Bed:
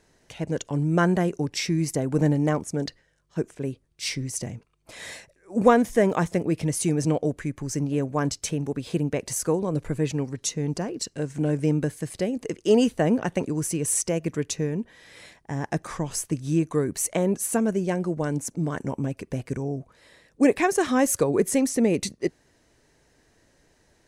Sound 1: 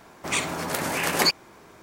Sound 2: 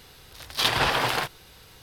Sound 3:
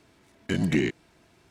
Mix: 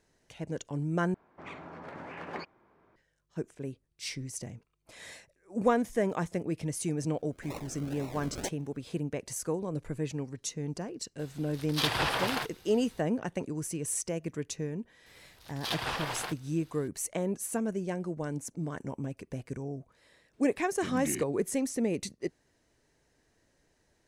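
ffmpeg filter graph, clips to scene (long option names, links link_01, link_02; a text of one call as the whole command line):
ffmpeg -i bed.wav -i cue0.wav -i cue1.wav -i cue2.wav -filter_complex "[1:a]asplit=2[link_01][link_02];[2:a]asplit=2[link_03][link_04];[0:a]volume=-8.5dB[link_05];[link_01]lowpass=1800[link_06];[link_02]acrusher=samples=39:mix=1:aa=0.000001:lfo=1:lforange=23.4:lforate=2[link_07];[link_05]asplit=2[link_08][link_09];[link_08]atrim=end=1.144[link_10];[link_06]atrim=end=1.82,asetpts=PTS-STARTPTS,volume=-14.5dB[link_11];[link_09]atrim=start=2.956[link_12];[link_07]atrim=end=1.82,asetpts=PTS-STARTPTS,volume=-16dB,afade=type=in:duration=0.004:curve=hsin,afade=type=out:start_time=1.816:duration=0.004:curve=hsin,adelay=7180[link_13];[link_03]atrim=end=1.82,asetpts=PTS-STARTPTS,volume=-6.5dB,afade=type=in:duration=0.004:curve=hsin,afade=type=out:start_time=1.816:duration=0.004:curve=hsin,adelay=11190[link_14];[link_04]atrim=end=1.82,asetpts=PTS-STARTPTS,volume=-11.5dB,afade=type=in:duration=0.004:curve=hsin,afade=type=out:start_time=1.816:duration=0.004:curve=hsin,adelay=15060[link_15];[3:a]atrim=end=1.5,asetpts=PTS-STARTPTS,volume=-12.5dB,afade=type=in:duration=0.004:curve=hsin,afade=type=out:start_time=1.496:duration=0.004:curve=hsin,adelay=20330[link_16];[link_10][link_11]acrossfade=duration=0.004:curve1=hsin:curve2=hsin[link_17];[link_17][link_12]acrossfade=duration=0.004:curve1=hsin:curve2=hsin[link_18];[link_18][link_13][link_14][link_15][link_16]amix=inputs=5:normalize=0" out.wav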